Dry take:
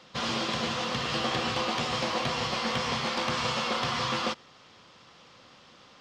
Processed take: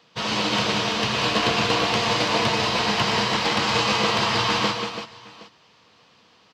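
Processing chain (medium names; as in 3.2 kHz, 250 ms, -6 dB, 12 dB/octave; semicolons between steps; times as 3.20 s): high-pass 86 Hz; treble shelf 5.6 kHz +5 dB; multi-tap echo 110/171/307/706 ms -9.5/-7/-6/-13.5 dB; speed mistake 48 kHz file played as 44.1 kHz; upward expansion 1.5:1, over -47 dBFS; trim +6.5 dB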